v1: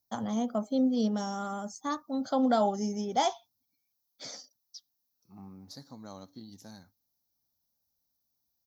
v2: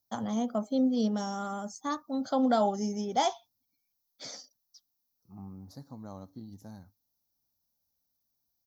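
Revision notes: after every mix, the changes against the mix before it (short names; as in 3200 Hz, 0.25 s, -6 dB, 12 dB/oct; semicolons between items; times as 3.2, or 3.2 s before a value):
second voice: remove weighting filter D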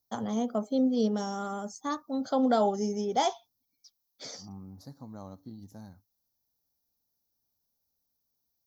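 first voice: add bell 430 Hz +7 dB 0.33 oct; second voice: entry -0.90 s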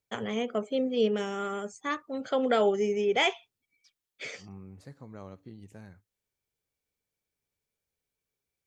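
master: remove EQ curve 170 Hz 0 dB, 260 Hz +6 dB, 400 Hz -7 dB, 820 Hz +5 dB, 1500 Hz -6 dB, 2600 Hz -21 dB, 3900 Hz +3 dB, 5700 Hz +10 dB, 8600 Hz -9 dB, 12000 Hz +12 dB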